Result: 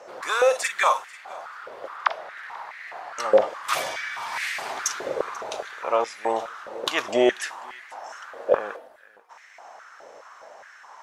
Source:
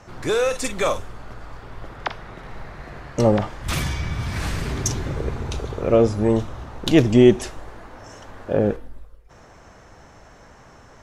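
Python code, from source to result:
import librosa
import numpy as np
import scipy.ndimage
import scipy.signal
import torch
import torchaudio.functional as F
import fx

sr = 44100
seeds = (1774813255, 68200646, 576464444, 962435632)

y = x + 10.0 ** (-22.0 / 20.0) * np.pad(x, (int(489 * sr / 1000.0), 0))[:len(x)]
y = fx.filter_held_highpass(y, sr, hz=4.8, low_hz=520.0, high_hz=2000.0)
y = F.gain(torch.from_numpy(y), -1.5).numpy()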